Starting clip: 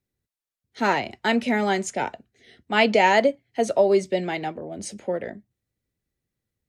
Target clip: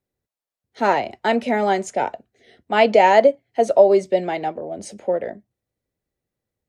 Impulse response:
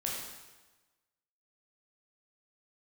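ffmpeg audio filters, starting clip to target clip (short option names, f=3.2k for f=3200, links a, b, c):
-af "equalizer=f=630:w=0.84:g=9.5,volume=-2.5dB"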